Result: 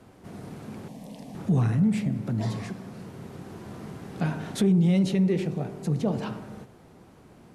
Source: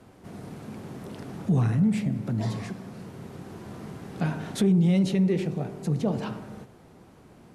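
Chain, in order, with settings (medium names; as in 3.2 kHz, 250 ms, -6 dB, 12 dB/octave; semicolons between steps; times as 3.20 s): 0.88–1.35 s: static phaser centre 370 Hz, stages 6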